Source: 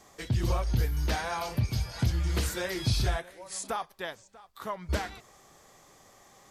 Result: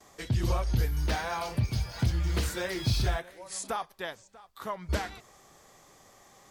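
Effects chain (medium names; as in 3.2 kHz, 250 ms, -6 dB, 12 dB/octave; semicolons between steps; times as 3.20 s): gate with hold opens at -49 dBFS; 1.01–3.37 s: decimation joined by straight lines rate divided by 2×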